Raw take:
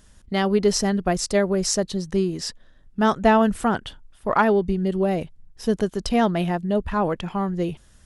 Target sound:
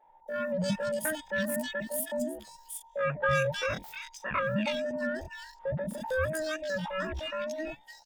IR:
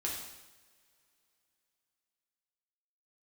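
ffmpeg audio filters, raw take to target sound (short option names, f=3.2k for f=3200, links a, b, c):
-filter_complex "[0:a]afftfilt=real='real(if(between(b,1,1008),(2*floor((b-1)/24)+1)*24-b,b),0)':imag='imag(if(between(b,1,1008),(2*floor((b-1)/24)+1)*24-b,b),0)*if(between(b,1,1008),-1,1)':win_size=2048:overlap=0.75,acrossover=split=150|1200[a][b][c];[a]adelay=60[d];[c]adelay=310[e];[d][b][e]amix=inputs=3:normalize=0,asetrate=80880,aresample=44100,atempo=0.545254,volume=-9dB"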